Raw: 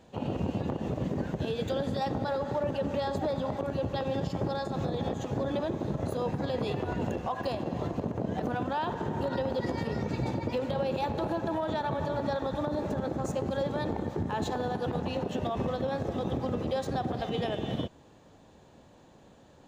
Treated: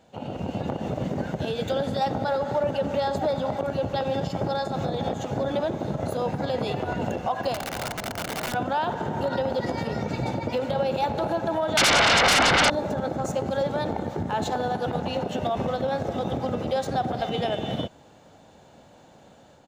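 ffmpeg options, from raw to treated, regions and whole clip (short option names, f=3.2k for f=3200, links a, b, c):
-filter_complex "[0:a]asettb=1/sr,asplit=3[a][b][c];[a]atrim=end=7.544[d];[b]atrim=start=7.54:end=8.54,asetpts=PTS-STARTPTS,afade=t=in:d=0.004:c=qsin,afade=t=out:st=0.996:d=0.004:c=qsin,equalizer=f=440:t=o:w=1.2:g=-4,aeval=exprs='(mod(29.9*val(0)+1,2)-1)/29.9':c=same[e];[c]atrim=start=8.536[f];[d][e]acrossfade=d=0.004:c1=hsin:c2=qsin[g];[g][f]acrossfade=d=0.004:c1=qsin:c2=hsin,asettb=1/sr,asplit=3[h][i][j];[h]atrim=end=11.774[k];[i]atrim=start=11.77:end=12.7,asetpts=PTS-STARTPTS,afade=t=in:d=0.004:c=qsin,afade=t=out:st=0.926:d=0.004:c=qsin,lowpass=2.9k,bandreject=f=47.47:t=h:w=4,bandreject=f=94.94:t=h:w=4,bandreject=f=142.41:t=h:w=4,bandreject=f=189.88:t=h:w=4,bandreject=f=237.35:t=h:w=4,bandreject=f=284.82:t=h:w=4,bandreject=f=332.29:t=h:w=4,bandreject=f=379.76:t=h:w=4,bandreject=f=427.23:t=h:w=4,aeval=exprs='0.0891*sin(PI/2*7.94*val(0)/0.0891)':c=same[l];[j]atrim=start=12.696[m];[k][l]acrossfade=d=0.004:c1=hsin:c2=qsin[n];[n][m]acrossfade=d=0.004:c1=qsin:c2=hsin,lowshelf=f=100:g=-11.5,aecho=1:1:1.4:0.31,dynaudnorm=f=320:g=3:m=5.5dB"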